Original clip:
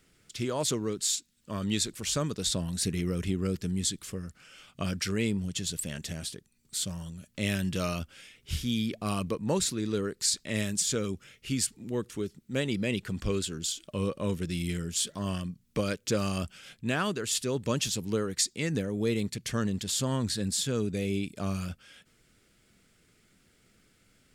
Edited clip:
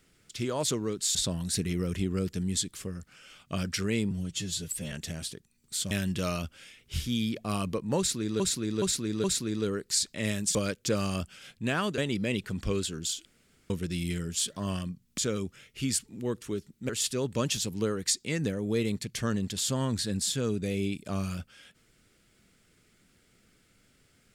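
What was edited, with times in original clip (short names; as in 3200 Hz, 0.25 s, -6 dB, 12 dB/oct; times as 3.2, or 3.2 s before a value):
1.15–2.43 cut
5.39–5.93 stretch 1.5×
6.92–7.48 cut
9.55–9.97 loop, 4 plays
10.86–12.57 swap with 15.77–17.2
13.84–14.29 room tone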